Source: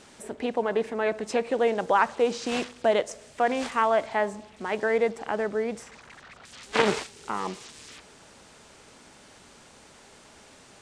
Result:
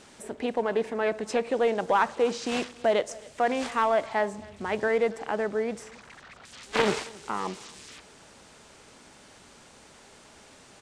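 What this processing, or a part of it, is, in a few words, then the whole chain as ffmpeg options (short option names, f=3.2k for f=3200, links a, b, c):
parallel distortion: -filter_complex "[0:a]aecho=1:1:271:0.0708,asettb=1/sr,asplit=3[a][b][c];[a]atrim=end=4.384[d];[b]atrim=start=4.38:end=4.88,asetpts=PTS-STARTPTS,afade=t=in:d=0.004:c=qsin,afade=t=out:st=0.496:d=0.004:c=qsin,equalizer=f=89:w=1.5:g=14.5[e];[c]atrim=start=4.876[f];[d][e]acrossfade=d=0.004:c1=hsin:c2=qsin[g];[g][f]acrossfade=d=0.004:c1=qsin:c2=hsin,asplit=2[h][i];[i]asoftclip=type=hard:threshold=-19dB,volume=-4.5dB[j];[h][j]amix=inputs=2:normalize=0,volume=-4.5dB"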